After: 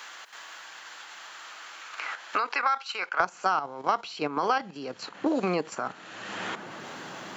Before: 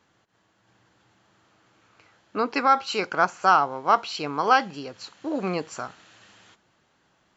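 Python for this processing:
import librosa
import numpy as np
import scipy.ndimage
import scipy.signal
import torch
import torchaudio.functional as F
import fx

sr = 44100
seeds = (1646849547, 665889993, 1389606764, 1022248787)

y = fx.level_steps(x, sr, step_db=10)
y = fx.highpass(y, sr, hz=fx.steps((0.0, 1200.0), (3.2, 150.0)), slope=12)
y = fx.band_squash(y, sr, depth_pct=100)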